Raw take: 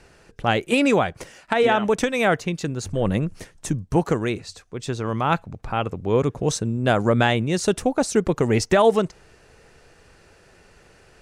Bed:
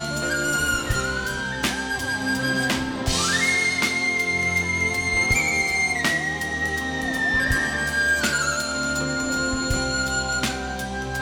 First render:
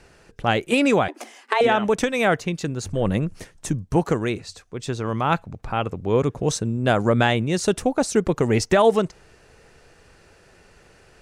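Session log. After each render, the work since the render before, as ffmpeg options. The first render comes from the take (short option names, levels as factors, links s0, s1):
-filter_complex "[0:a]asettb=1/sr,asplit=3[s0][s1][s2];[s0]atrim=end=1.084[s3];[s1]atrim=start=1.08:end=1.61,asetpts=PTS-STARTPTS,afade=t=in:d=0.004:c=qsin,afade=t=out:st=0.526:d=0.004:c=qsin,afreqshift=210[s4];[s2]atrim=start=1.606[s5];[s3][s4]acrossfade=d=0.004:c1=hsin:c2=qsin[s6];[s6][s5]acrossfade=d=0.004:c1=qsin:c2=hsin"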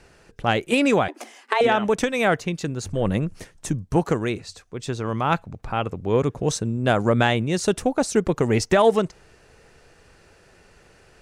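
-af "aeval=exprs='0.501*(cos(1*acos(clip(val(0)/0.501,-1,1)))-cos(1*PI/2))+0.0141*(cos(3*acos(clip(val(0)/0.501,-1,1)))-cos(3*PI/2))':c=same"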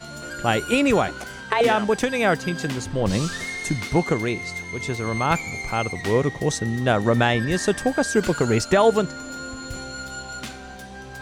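-filter_complex "[1:a]volume=0.316[s0];[0:a][s0]amix=inputs=2:normalize=0"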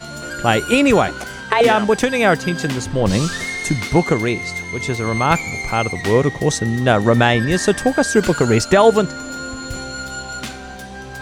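-af "volume=1.88,alimiter=limit=0.891:level=0:latency=1"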